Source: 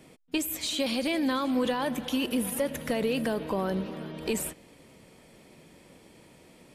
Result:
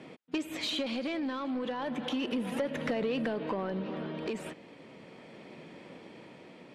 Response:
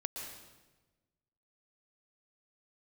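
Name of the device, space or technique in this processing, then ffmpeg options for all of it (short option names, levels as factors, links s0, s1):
AM radio: -af "highpass=160,lowpass=3300,acompressor=threshold=0.0224:ratio=6,asoftclip=type=tanh:threshold=0.0335,tremolo=f=0.35:d=0.34,volume=2.11"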